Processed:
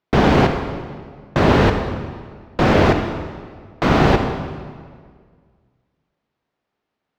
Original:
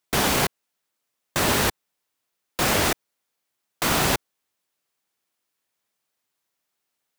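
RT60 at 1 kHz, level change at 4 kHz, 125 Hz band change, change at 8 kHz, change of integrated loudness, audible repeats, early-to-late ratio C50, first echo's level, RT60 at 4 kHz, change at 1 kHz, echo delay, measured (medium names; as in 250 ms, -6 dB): 1.7 s, -2.0 dB, +12.5 dB, -15.0 dB, +5.0 dB, no echo, 6.0 dB, no echo, 1.4 s, +7.0 dB, no echo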